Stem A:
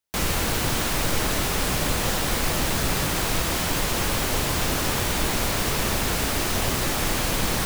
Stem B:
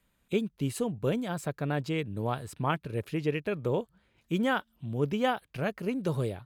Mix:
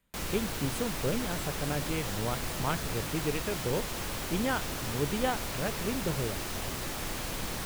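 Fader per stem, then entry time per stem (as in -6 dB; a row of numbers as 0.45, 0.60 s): -11.5, -3.0 dB; 0.00, 0.00 s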